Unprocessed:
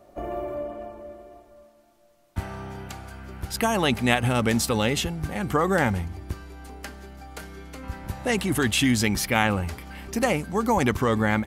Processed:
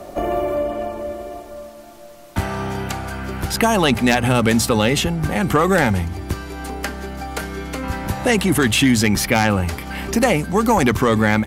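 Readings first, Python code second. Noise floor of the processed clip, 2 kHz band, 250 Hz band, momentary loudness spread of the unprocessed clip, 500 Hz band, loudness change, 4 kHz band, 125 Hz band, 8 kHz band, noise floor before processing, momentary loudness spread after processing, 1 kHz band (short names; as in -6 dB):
-39 dBFS, +6.0 dB, +7.5 dB, 19 LU, +7.5 dB, +5.5 dB, +6.0 dB, +6.5 dB, +6.5 dB, -58 dBFS, 13 LU, +6.5 dB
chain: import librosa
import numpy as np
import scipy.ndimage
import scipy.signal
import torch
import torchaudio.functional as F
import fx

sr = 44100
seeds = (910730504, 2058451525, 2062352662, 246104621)

y = fx.hum_notches(x, sr, base_hz=60, count=2)
y = fx.fold_sine(y, sr, drive_db=7, ceiling_db=-4.0)
y = fx.band_squash(y, sr, depth_pct=40)
y = F.gain(torch.from_numpy(y), -3.0).numpy()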